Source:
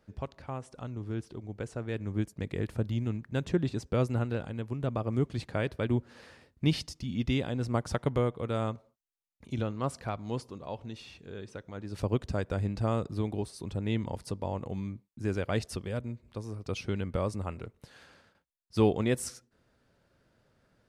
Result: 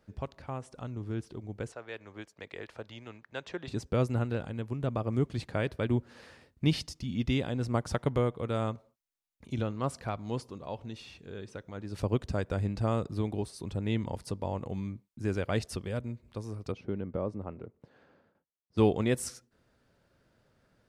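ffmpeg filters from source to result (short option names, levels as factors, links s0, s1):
-filter_complex "[0:a]asettb=1/sr,asplit=3[s0][s1][s2];[s0]atrim=end=1.724[s3];[s1]atrim=start=1.72:end=3.68,asetpts=PTS-STARTPTS,afade=t=in:d=0.004:c=qsin,afade=t=out:st=1.956:d=0.004:c=qsin,acrossover=split=480 6400:gain=0.1 1 0.141[s4][s5][s6];[s4][s5][s6]amix=inputs=3:normalize=0[s7];[s2]atrim=start=3.676[s8];[s3][s7]acrossfade=d=0.004:c1=hsin:c2=qsin[s9];[s9][s8]acrossfade=d=0.004:c1=qsin:c2=hsin,asplit=3[s10][s11][s12];[s10]afade=t=out:st=16.71:d=0.02[s13];[s11]bandpass=f=330:t=q:w=0.6,afade=t=in:st=16.71:d=0.02,afade=t=out:st=18.77:d=0.02[s14];[s12]afade=t=in:st=18.77:d=0.02[s15];[s13][s14][s15]amix=inputs=3:normalize=0"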